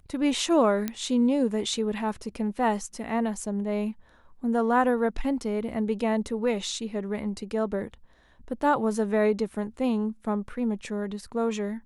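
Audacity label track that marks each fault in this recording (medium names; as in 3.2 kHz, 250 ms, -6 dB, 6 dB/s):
0.880000	0.880000	pop -14 dBFS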